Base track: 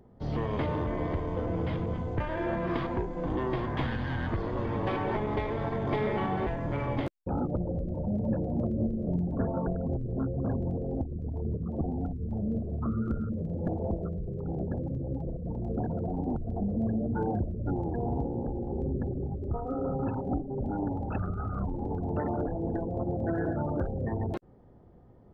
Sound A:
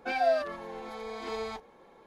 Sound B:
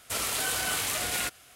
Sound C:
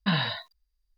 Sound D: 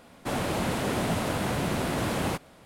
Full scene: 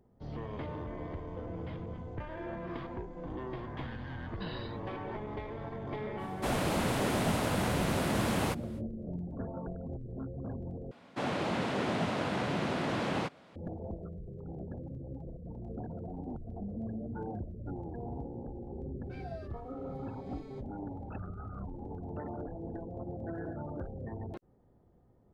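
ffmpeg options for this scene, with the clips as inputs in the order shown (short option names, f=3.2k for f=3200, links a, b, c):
-filter_complex "[4:a]asplit=2[a][b];[0:a]volume=-9.5dB[c];[b]highpass=120,lowpass=4.6k[d];[1:a]flanger=delay=2.1:depth=8.9:regen=-39:speed=1.4:shape=sinusoidal[e];[c]asplit=2[f][g];[f]atrim=end=10.914[h];[d]atrim=end=2.65,asetpts=PTS-STARTPTS,volume=-3.5dB[i];[g]atrim=start=13.556[j];[3:a]atrim=end=0.97,asetpts=PTS-STARTPTS,volume=-17.5dB,afade=t=in:d=0.004:c=hsin,afade=t=out:st=0.966:d=0.004:c=hsin,adelay=4340[k];[a]atrim=end=2.65,asetpts=PTS-STARTPTS,volume=-2.5dB,afade=t=in:d=0.05,afade=t=out:st=2.6:d=0.05,adelay=6170[l];[e]atrim=end=2.06,asetpts=PTS-STARTPTS,volume=-17dB,afade=t=in:d=0.004:c=hsin,afade=t=out:st=2.056:d=0.004:c=hsin,adelay=19040[m];[h][i]acrossfade=d=0.004:c1=hsin:c2=hsin[n];[n][j]acrossfade=d=0.004:c1=hsin:c2=hsin[o];[o][k][l][m]amix=inputs=4:normalize=0"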